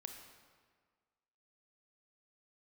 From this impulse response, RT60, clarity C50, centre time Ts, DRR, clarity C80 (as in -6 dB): 1.7 s, 5.5 dB, 38 ms, 4.5 dB, 7.0 dB